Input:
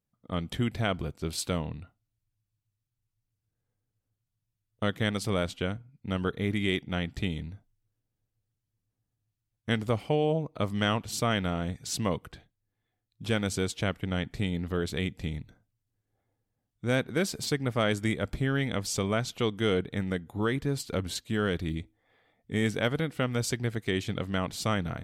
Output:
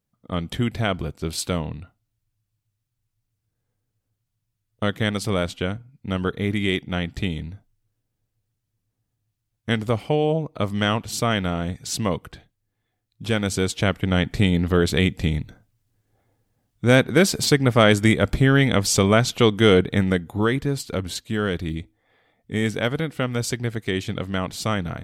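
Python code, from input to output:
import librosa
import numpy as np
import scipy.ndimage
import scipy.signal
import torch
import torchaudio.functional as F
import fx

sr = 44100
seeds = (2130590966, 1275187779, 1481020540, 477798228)

y = fx.gain(x, sr, db=fx.line((13.35, 5.5), (14.36, 11.5), (19.96, 11.5), (20.86, 4.5)))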